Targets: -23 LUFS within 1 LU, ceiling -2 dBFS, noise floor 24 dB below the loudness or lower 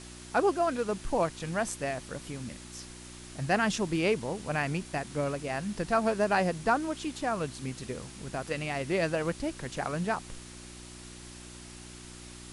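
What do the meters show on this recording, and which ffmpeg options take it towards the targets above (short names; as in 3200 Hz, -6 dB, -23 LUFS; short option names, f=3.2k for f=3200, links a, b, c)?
hum 60 Hz; harmonics up to 360 Hz; hum level -48 dBFS; noise floor -47 dBFS; noise floor target -55 dBFS; loudness -31.0 LUFS; peak -13.5 dBFS; loudness target -23.0 LUFS
-> -af "bandreject=f=60:t=h:w=4,bandreject=f=120:t=h:w=4,bandreject=f=180:t=h:w=4,bandreject=f=240:t=h:w=4,bandreject=f=300:t=h:w=4,bandreject=f=360:t=h:w=4"
-af "afftdn=nr=8:nf=-47"
-af "volume=8dB"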